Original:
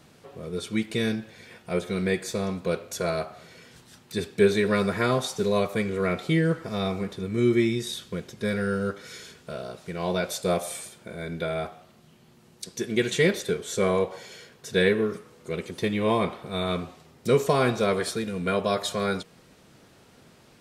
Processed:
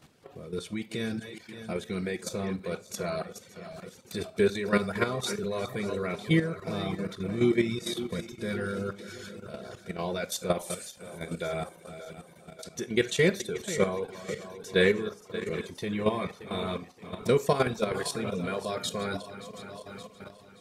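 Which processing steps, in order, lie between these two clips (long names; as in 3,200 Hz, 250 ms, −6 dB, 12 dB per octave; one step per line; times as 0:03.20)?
feedback delay that plays each chunk backwards 287 ms, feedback 72%, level −11 dB
reverb reduction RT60 0.63 s
output level in coarse steps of 11 dB
four-comb reverb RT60 0.3 s, combs from 31 ms, DRR 16.5 dB
level +1.5 dB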